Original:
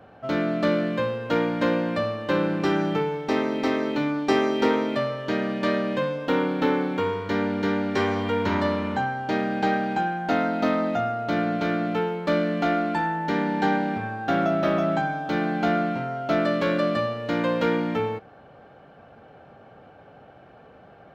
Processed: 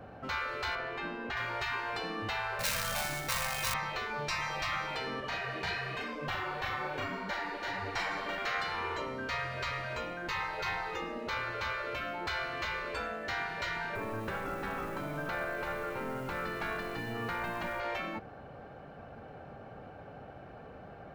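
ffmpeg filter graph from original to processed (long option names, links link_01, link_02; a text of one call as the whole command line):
ffmpeg -i in.wav -filter_complex "[0:a]asettb=1/sr,asplit=3[link_01][link_02][link_03];[link_01]atrim=end=0.754[link_04];[link_02]atrim=start=0.75:end=1.37,asetpts=PTS-STARTPTS,afade=type=in:duration=0.004:curve=qsin,afade=type=out:start_time=0.616:duration=0.004:curve=qsin,lowpass=frequency=2300:poles=1,aeval=exprs='val(0)+0.02*sin(2*PI*1000*n/s)':channel_layout=same[link_05];[link_03]atrim=start=1.366[link_06];[link_04][link_05]acrossfade=duration=0.004:curve1=hsin:curve2=qsin[link_07];[link_07][link_06]acrossfade=duration=0.004:curve1=qsin:curve2=hsin,asettb=1/sr,asplit=3[link_08][link_09][link_10];[link_08]atrim=end=2.594[link_11];[link_09]atrim=start=2.59:end=3.74,asetpts=PTS-STARTPTS,afade=type=in:duration=0.004:curve=qsin,afade=type=out:start_time=1.146:duration=0.004:curve=qsin,bandreject=frequency=1000:width=5.5,aecho=1:1:2.8:0.98,atrim=end_sample=50715,acrusher=bits=3:mode=log:mix=0:aa=0.000001[link_12];[link_10]atrim=start=3.736[link_13];[link_11][link_12]acrossfade=duration=0.004:curve1=hsin:curve2=qsin[link_14];[link_14][link_13]acrossfade=duration=0.004:curve1=qsin:curve2=hsin,asettb=1/sr,asplit=3[link_15][link_16][link_17];[link_15]atrim=end=5.204[link_18];[link_16]atrim=start=5.2:end=8.38,asetpts=PTS-STARTPTS,afade=type=in:duration=0.004:curve=qsin,afade=type=out:start_time=3.176:duration=0.004:curve=qsin,asplit=2[link_19][link_20];[link_20]adelay=39,volume=-3dB[link_21];[link_19][link_21]amix=inputs=2:normalize=0,atrim=end_sample=140238,flanger=delay=5.1:depth=7.5:regen=-9:speed=1.1:shape=triangular[link_22];[link_17]atrim=start=8.376[link_23];[link_18][link_22]acrossfade=duration=0.004:curve1=hsin:curve2=qsin[link_24];[link_24][link_23]acrossfade=duration=0.004:curve1=qsin:curve2=hsin,asettb=1/sr,asplit=3[link_25][link_26][link_27];[link_25]atrim=end=13.954[link_28];[link_26]atrim=start=13.95:end=17.8,asetpts=PTS-STARTPTS,afade=type=in:duration=0.004:curve=qsin,afade=type=out:start_time=3.846:duration=0.004:curve=qsin,acompressor=threshold=-27dB:ratio=4:attack=3.2:release=140:knee=1:detection=peak,asplit=2[link_29][link_30];[link_30]highpass=frequency=720:poles=1,volume=13dB,asoftclip=type=tanh:threshold=-17.5dB[link_31];[link_29][link_31]amix=inputs=2:normalize=0,lowpass=frequency=1200:poles=1,volume=-6dB,acrusher=bits=8:mode=log:mix=0:aa=0.000001[link_32];[link_27]atrim=start=17.796[link_33];[link_28][link_32]acrossfade=duration=0.004:curve1=hsin:curve2=qsin[link_34];[link_34][link_33]acrossfade=duration=0.004:curve1=qsin:curve2=hsin,lowshelf=frequency=74:gain=11.5,afftfilt=real='re*lt(hypot(re,im),0.112)':imag='im*lt(hypot(re,im),0.112)':win_size=1024:overlap=0.75,equalizer=frequency=3300:width=5.7:gain=-5.5" out.wav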